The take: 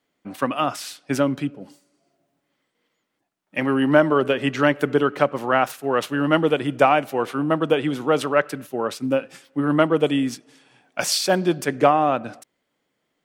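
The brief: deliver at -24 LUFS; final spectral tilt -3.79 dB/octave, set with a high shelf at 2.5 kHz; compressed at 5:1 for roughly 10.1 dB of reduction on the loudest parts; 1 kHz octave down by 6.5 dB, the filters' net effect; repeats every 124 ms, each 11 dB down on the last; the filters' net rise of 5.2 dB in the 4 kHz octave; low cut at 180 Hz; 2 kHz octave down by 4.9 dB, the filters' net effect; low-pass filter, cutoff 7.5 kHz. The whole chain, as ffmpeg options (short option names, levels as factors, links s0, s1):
-af "highpass=180,lowpass=7500,equalizer=f=1000:t=o:g=-9,equalizer=f=2000:t=o:g=-6.5,highshelf=f=2500:g=4,equalizer=f=4000:t=o:g=6,acompressor=threshold=0.0562:ratio=5,aecho=1:1:124|248|372:0.282|0.0789|0.0221,volume=1.88"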